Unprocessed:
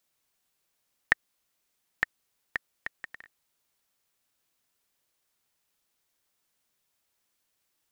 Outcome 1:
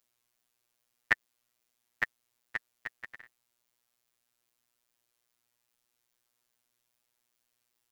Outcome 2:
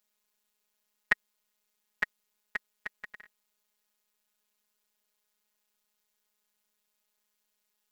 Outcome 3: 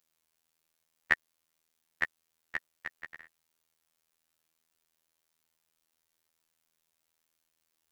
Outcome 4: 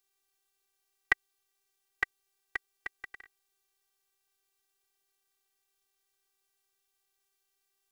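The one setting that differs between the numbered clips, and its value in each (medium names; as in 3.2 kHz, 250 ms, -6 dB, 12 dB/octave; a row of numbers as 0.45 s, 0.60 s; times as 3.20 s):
robot voice, frequency: 120 Hz, 210 Hz, 81 Hz, 390 Hz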